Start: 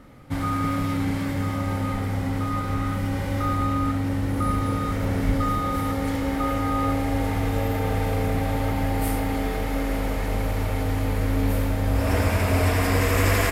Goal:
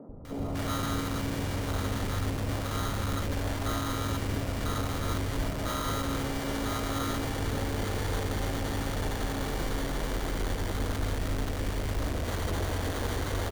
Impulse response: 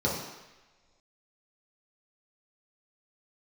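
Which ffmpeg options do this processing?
-filter_complex "[0:a]alimiter=limit=0.158:level=0:latency=1:release=104,areverse,acompressor=mode=upward:threshold=0.0126:ratio=2.5,areverse,acrusher=samples=17:mix=1:aa=0.000001,volume=50.1,asoftclip=hard,volume=0.02,asplit=3[s0][s1][s2];[s1]asetrate=22050,aresample=44100,atempo=2,volume=0.562[s3];[s2]asetrate=35002,aresample=44100,atempo=1.25992,volume=0.447[s4];[s0][s3][s4]amix=inputs=3:normalize=0,acrossover=split=180|800[s5][s6][s7];[s5]adelay=90[s8];[s7]adelay=250[s9];[s8][s6][s9]amix=inputs=3:normalize=0,volume=1.5"

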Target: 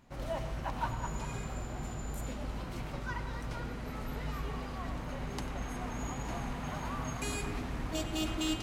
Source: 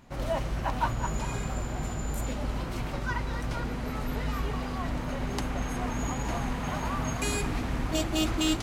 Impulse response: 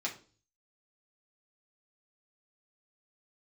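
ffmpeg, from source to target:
-filter_complex "[0:a]asplit=2[s0][s1];[1:a]atrim=start_sample=2205,asetrate=24696,aresample=44100,adelay=94[s2];[s1][s2]afir=irnorm=-1:irlink=0,volume=0.141[s3];[s0][s3]amix=inputs=2:normalize=0,volume=0.447"

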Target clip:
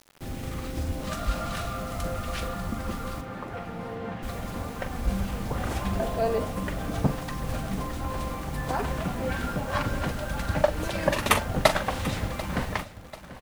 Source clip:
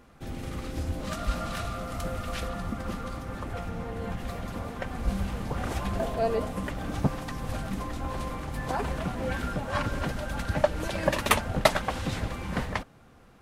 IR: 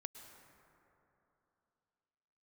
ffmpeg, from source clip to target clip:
-filter_complex "[0:a]acrusher=bits=7:mix=0:aa=0.000001,asettb=1/sr,asplit=3[s0][s1][s2];[s0]atrim=end=3.214[s3];[s1]atrim=start=3.21:end=4.23,asetpts=PTS-STARTPTS,afade=t=in:d=0.004:c=qsin,afade=t=out:st=1.016:d=0.004:c=qsin,highpass=140,lowpass=3000[s4];[s2]atrim=start=4.226[s5];[s3][s4]acrossfade=d=0.004:c1=hsin:c2=qsin[s6];[s6][s5]acrossfade=d=0.004:c1=qsin:c2=hsin,asplit=2[s7][s8];[s8]adelay=42,volume=0.282[s9];[s7][s9]amix=inputs=2:normalize=0,aecho=1:1:740|1480|2220|2960:0.158|0.0697|0.0307|0.0135,volume=1.12"

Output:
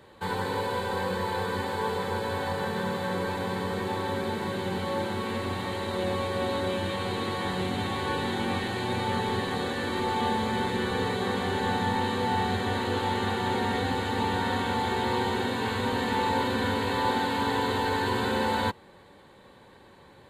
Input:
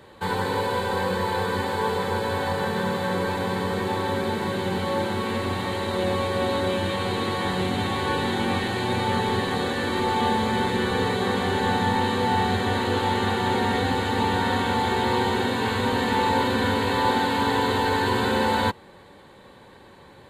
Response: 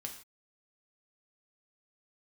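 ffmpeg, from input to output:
-af "volume=0.596"

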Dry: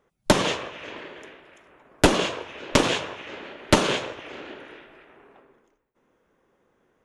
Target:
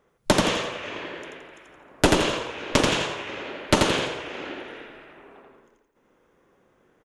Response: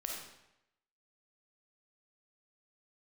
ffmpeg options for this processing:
-filter_complex "[0:a]asplit=2[s0][s1];[s1]acompressor=threshold=0.0282:ratio=6,volume=0.841[s2];[s0][s2]amix=inputs=2:normalize=0,aecho=1:1:85|170|255|340|425:0.708|0.269|0.102|0.0388|0.0148,volume=0.708"

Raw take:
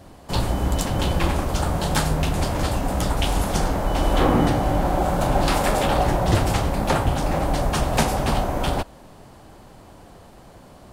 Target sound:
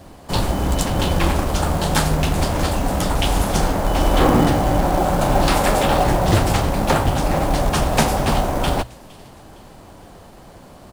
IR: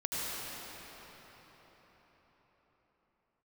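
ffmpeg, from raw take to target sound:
-filter_complex "[0:a]bandreject=f=60:t=h:w=6,bandreject=f=120:t=h:w=6,acrossover=split=1900[s0][s1];[s0]acrusher=bits=5:mode=log:mix=0:aa=0.000001[s2];[s1]aecho=1:1:462|924|1386:0.0944|0.0406|0.0175[s3];[s2][s3]amix=inputs=2:normalize=0,volume=1.5"

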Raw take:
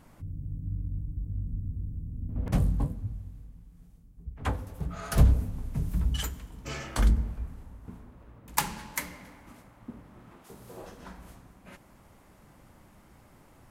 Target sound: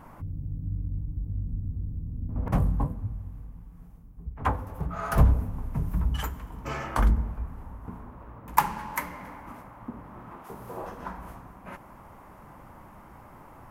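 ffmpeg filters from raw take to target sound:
-filter_complex "[0:a]asplit=2[s0][s1];[s1]acompressor=threshold=0.00794:ratio=6,volume=0.891[s2];[s0][s2]amix=inputs=2:normalize=0,equalizer=f=1000:t=o:w=1:g=9,equalizer=f=4000:t=o:w=1:g=-8,equalizer=f=8000:t=o:w=1:g=-8"

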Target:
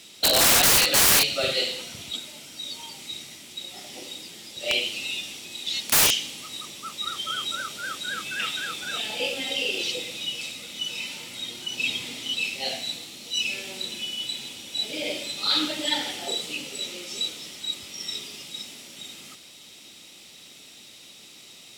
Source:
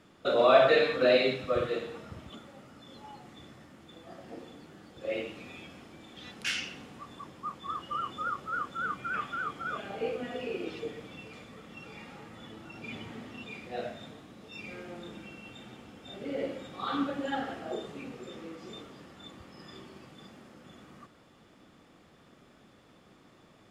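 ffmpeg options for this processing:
-af "highpass=f=84:p=1,aexciter=amount=10.4:drive=4.5:freq=2100,aeval=exprs='(mod(4.47*val(0)+1,2)-1)/4.47':c=same,asetrate=48000,aresample=44100,volume=1.12"

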